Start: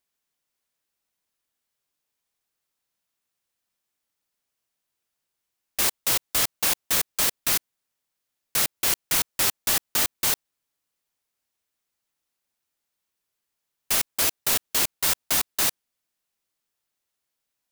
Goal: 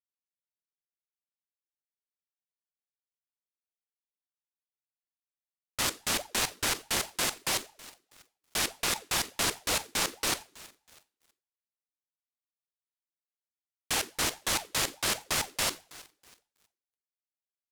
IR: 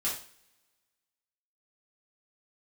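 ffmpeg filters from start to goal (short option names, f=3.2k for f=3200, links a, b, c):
-filter_complex "[0:a]adynamicsmooth=sensitivity=8:basefreq=2.5k,asplit=6[a][b][c][d][e][f];[b]adelay=323,afreqshift=47,volume=-16.5dB[g];[c]adelay=646,afreqshift=94,volume=-21.7dB[h];[d]adelay=969,afreqshift=141,volume=-26.9dB[i];[e]adelay=1292,afreqshift=188,volume=-32.1dB[j];[f]adelay=1615,afreqshift=235,volume=-37.3dB[k];[a][g][h][i][j][k]amix=inputs=6:normalize=0,aeval=exprs='sgn(val(0))*max(abs(val(0))-0.00473,0)':c=same,asplit=2[l][m];[m]asubboost=boost=11.5:cutoff=73[n];[1:a]atrim=start_sample=2205,asetrate=57330,aresample=44100,adelay=18[o];[n][o]afir=irnorm=-1:irlink=0,volume=-17.5dB[p];[l][p]amix=inputs=2:normalize=0,aeval=exprs='val(0)*sin(2*PI*590*n/s+590*0.5/4.8*sin(2*PI*4.8*n/s))':c=same,volume=1.5dB"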